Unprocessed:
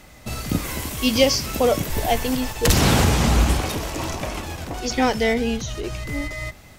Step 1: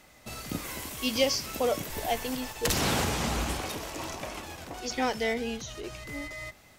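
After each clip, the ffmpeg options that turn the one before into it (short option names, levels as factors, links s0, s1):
-af "lowshelf=f=190:g=-9.5,volume=0.422"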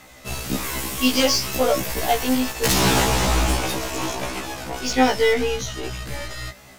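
-af "aeval=exprs='0.266*sin(PI/2*2*val(0)/0.266)':c=same,aeval=exprs='0.266*(cos(1*acos(clip(val(0)/0.266,-1,1)))-cos(1*PI/2))+0.0168*(cos(8*acos(clip(val(0)/0.266,-1,1)))-cos(8*PI/2))':c=same,afftfilt=real='re*1.73*eq(mod(b,3),0)':imag='im*1.73*eq(mod(b,3),0)':win_size=2048:overlap=0.75,volume=1.33"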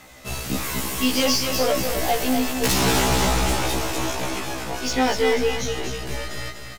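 -filter_complex "[0:a]asoftclip=type=tanh:threshold=0.2,asplit=2[s0][s1];[s1]aecho=0:1:245|490|735|980|1225:0.447|0.201|0.0905|0.0407|0.0183[s2];[s0][s2]amix=inputs=2:normalize=0"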